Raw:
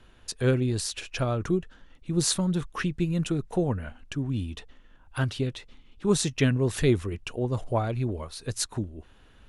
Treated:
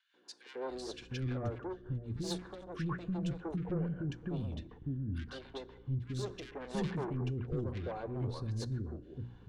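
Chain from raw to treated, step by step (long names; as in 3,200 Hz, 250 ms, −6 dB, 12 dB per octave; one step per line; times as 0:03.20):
low-pass filter 3,500 Hz 12 dB per octave
parametric band 2,600 Hz −8 dB 0.86 octaves
mains-hum notches 60/120/180/240/300/360 Hz
notch comb filter 640 Hz
dense smooth reverb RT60 1.3 s, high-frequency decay 0.5×, DRR 18 dB
soft clipping −29.5 dBFS, distortion −7 dB
rotating-speaker cabinet horn 5 Hz, later 0.8 Hz, at 0:02.66
hum with harmonics 60 Hz, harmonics 6, −59 dBFS −4 dB per octave
three-band delay without the direct sound highs, mids, lows 140/700 ms, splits 330/1,700 Hz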